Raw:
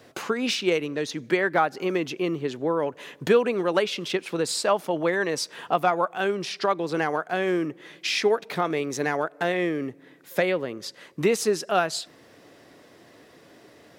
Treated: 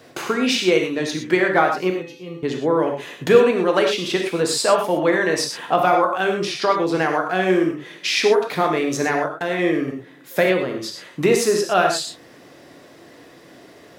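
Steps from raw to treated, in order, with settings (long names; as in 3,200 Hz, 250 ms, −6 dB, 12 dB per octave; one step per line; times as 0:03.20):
0:01.90–0:02.43: tuned comb filter 170 Hz, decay 0.36 s, harmonics odd, mix 90%
0:09.16–0:09.59: output level in coarse steps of 14 dB
reverb whose tail is shaped and stops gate 140 ms flat, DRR 2 dB
level +4 dB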